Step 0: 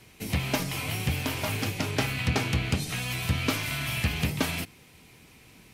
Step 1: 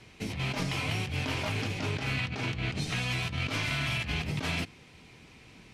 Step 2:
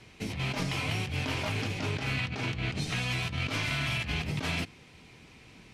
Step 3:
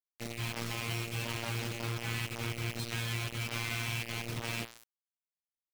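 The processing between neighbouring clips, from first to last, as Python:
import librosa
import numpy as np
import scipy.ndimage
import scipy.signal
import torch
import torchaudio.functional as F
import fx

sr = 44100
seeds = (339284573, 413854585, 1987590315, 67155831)

y1 = scipy.signal.sosfilt(scipy.signal.butter(2, 5800.0, 'lowpass', fs=sr, output='sos'), x)
y1 = fx.over_compress(y1, sr, threshold_db=-31.0, ratio=-1.0)
y1 = F.gain(torch.from_numpy(y1), -1.0).numpy()
y2 = y1
y3 = fx.rev_freeverb(y2, sr, rt60_s=0.83, hf_ratio=0.5, predelay_ms=5, drr_db=12.0)
y3 = fx.robotise(y3, sr, hz=116.0)
y3 = fx.quant_dither(y3, sr, seeds[0], bits=6, dither='none')
y3 = F.gain(torch.from_numpy(y3), -3.5).numpy()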